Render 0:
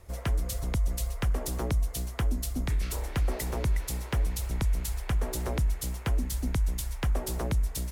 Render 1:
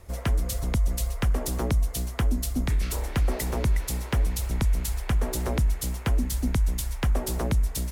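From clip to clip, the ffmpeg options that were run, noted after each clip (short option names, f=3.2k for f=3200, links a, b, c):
-af "equalizer=f=230:t=o:w=0.32:g=4,volume=3.5dB"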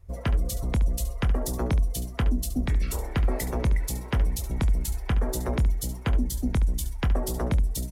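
-af "afftdn=nr=16:nf=-41,aecho=1:1:24|71:0.237|0.237"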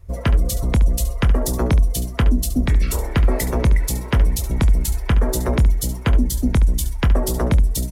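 -af "bandreject=f=770:w=12,volume=8dB"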